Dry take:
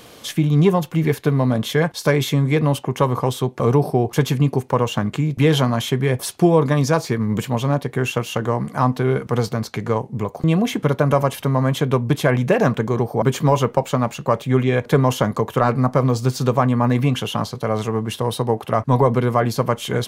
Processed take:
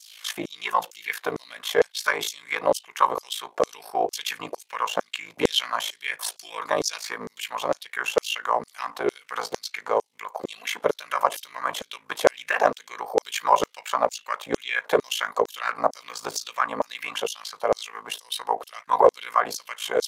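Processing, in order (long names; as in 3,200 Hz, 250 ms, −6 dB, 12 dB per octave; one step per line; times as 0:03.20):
ring modulation 27 Hz
auto-filter high-pass saw down 2.2 Hz 450–6,400 Hz
highs frequency-modulated by the lows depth 0.14 ms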